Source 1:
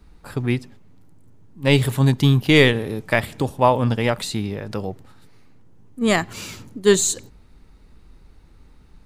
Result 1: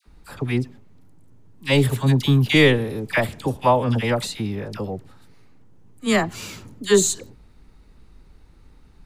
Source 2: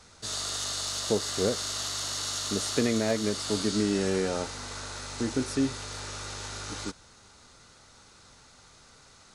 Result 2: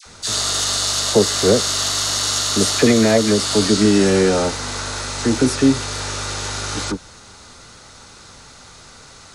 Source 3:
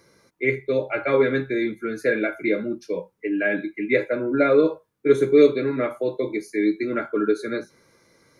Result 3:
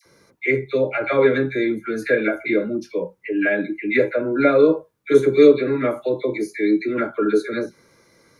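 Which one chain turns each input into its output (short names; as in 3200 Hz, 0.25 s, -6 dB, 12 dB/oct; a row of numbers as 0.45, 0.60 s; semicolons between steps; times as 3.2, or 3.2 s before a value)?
dispersion lows, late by 57 ms, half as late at 1100 Hz; normalise peaks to -2 dBFS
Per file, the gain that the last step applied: -1.0, +12.5, +3.0 dB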